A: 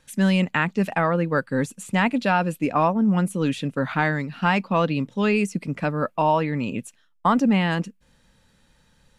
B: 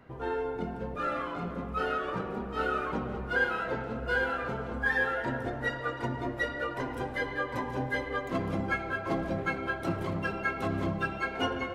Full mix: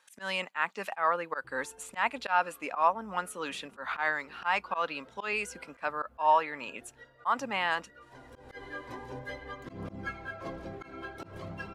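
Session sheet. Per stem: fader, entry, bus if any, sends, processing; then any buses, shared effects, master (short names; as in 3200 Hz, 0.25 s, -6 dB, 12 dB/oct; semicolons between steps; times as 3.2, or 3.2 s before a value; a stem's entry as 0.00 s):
-5.0 dB, 0.00 s, no send, HPF 680 Hz 12 dB/oct; bell 1100 Hz +6.5 dB 1.2 oct
-9.0 dB, 1.35 s, no send, bell 5300 Hz +4 dB 1.2 oct; phaser 0.47 Hz, delay 3.1 ms, feedback 36%; auto duck -16 dB, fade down 2.00 s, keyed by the first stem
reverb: off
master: auto swell 0.12 s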